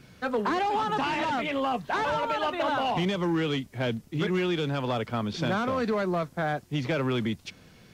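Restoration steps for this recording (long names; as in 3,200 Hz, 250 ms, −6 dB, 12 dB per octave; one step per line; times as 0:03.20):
clipped peaks rebuilt −20 dBFS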